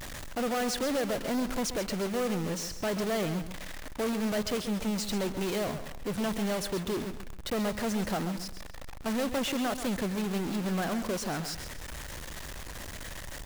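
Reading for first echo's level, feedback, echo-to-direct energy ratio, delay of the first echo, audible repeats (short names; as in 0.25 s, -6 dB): -11.0 dB, 28%, -10.5 dB, 0.133 s, 3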